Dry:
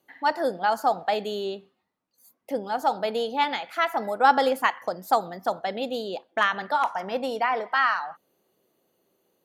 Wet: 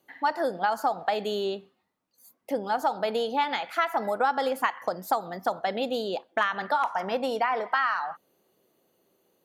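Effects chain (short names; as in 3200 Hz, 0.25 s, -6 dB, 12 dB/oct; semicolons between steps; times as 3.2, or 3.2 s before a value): compressor 6:1, threshold -25 dBFS, peak gain reduction 12.5 dB; dynamic EQ 1200 Hz, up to +3 dB, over -41 dBFS, Q 1.1; gain +1.5 dB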